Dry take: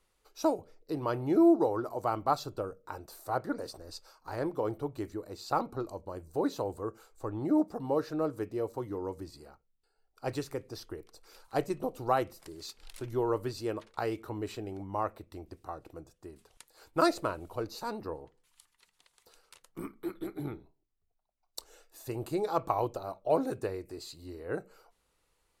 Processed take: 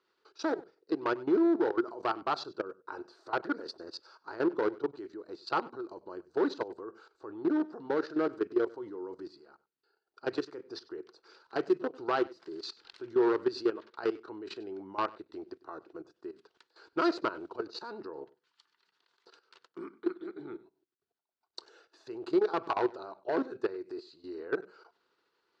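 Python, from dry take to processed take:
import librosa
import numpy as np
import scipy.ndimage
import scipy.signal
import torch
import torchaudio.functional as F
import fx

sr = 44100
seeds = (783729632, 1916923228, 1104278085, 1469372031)

y = fx.high_shelf(x, sr, hz=3000.0, db=-4.5)
y = fx.notch(y, sr, hz=760.0, q=12.0)
y = fx.level_steps(y, sr, step_db=16)
y = np.clip(10.0 ** (29.5 / 20.0) * y, -1.0, 1.0) / 10.0 ** (29.5 / 20.0)
y = fx.cabinet(y, sr, low_hz=290.0, low_slope=12, high_hz=5200.0, hz=(370.0, 570.0, 1500.0, 2200.0, 4500.0), db=(8, -6, 7, -4, 5))
y = y + 10.0 ** (-21.5 / 20.0) * np.pad(y, (int(97 * sr / 1000.0), 0))[:len(y)]
y = y * librosa.db_to_amplitude(6.0)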